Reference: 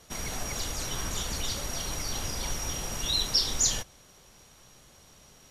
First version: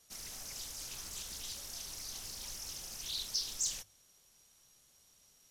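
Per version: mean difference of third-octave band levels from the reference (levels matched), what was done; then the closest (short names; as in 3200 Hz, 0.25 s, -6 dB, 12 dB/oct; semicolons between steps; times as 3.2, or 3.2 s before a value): 6.5 dB: pre-emphasis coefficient 0.8; notches 50/100/150 Hz; in parallel at -5 dB: soft clip -28.5 dBFS, distortion -9 dB; on the sum: Doppler distortion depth 0.58 ms; gain -9 dB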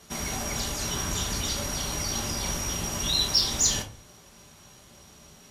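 1.5 dB: HPF 43 Hz; notch 510 Hz, Q 17; in parallel at -6 dB: soft clip -23 dBFS, distortion -13 dB; on the sum: shoebox room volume 230 m³, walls furnished, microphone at 1.2 m; gain -1.5 dB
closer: second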